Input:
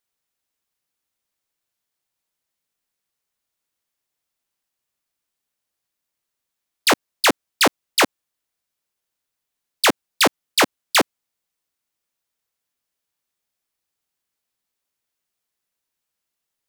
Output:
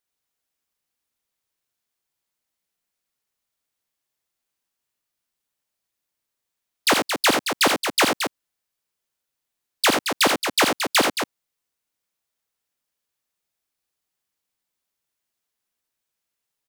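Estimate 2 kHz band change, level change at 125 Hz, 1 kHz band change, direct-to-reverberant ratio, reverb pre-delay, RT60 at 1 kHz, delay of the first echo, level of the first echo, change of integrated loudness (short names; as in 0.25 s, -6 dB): -0.5 dB, -0.5 dB, -0.5 dB, none, none, none, 44 ms, -14.5 dB, -1.0 dB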